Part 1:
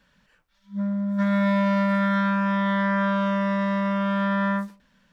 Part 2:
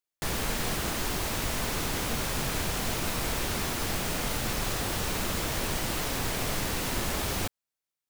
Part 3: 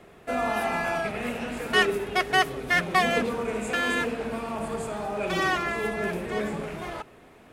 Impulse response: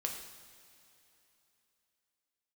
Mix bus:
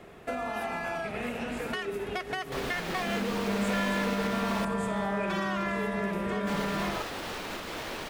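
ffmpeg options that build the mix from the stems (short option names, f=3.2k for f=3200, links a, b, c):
-filter_complex "[0:a]adelay=2300,volume=-10dB[a];[1:a]acrossover=split=230 4600:gain=0.224 1 0.224[b][c][d];[b][c][d]amix=inputs=3:normalize=0,alimiter=level_in=3.5dB:limit=-24dB:level=0:latency=1:release=167,volume=-3.5dB,adelay=2300,volume=0.5dB,asplit=3[e][f][g];[e]atrim=end=4.65,asetpts=PTS-STARTPTS,afade=t=out:st=4.646:d=0.004:c=hsin[h];[f]atrim=start=4.65:end=6.47,asetpts=PTS-STARTPTS,volume=0[i];[g]atrim=start=6.47,asetpts=PTS-STARTPTS,afade=t=in:d=0.004:c=hsin[j];[h][i][j]concat=n=3:v=0:a=1[k];[2:a]equalizer=f=10k:t=o:w=0.77:g=-3,alimiter=limit=-19dB:level=0:latency=1:release=146,acompressor=threshold=-32dB:ratio=6,volume=1.5dB[l];[a][k][l]amix=inputs=3:normalize=0"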